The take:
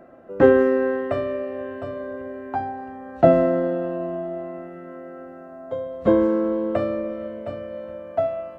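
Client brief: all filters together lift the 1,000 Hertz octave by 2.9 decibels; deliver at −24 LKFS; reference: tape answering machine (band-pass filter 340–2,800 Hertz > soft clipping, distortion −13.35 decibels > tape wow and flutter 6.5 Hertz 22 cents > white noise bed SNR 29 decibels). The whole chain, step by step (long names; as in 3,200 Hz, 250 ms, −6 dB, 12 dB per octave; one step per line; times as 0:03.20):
band-pass filter 340–2,800 Hz
parametric band 1,000 Hz +5 dB
soft clipping −11 dBFS
tape wow and flutter 6.5 Hz 22 cents
white noise bed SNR 29 dB
level +1 dB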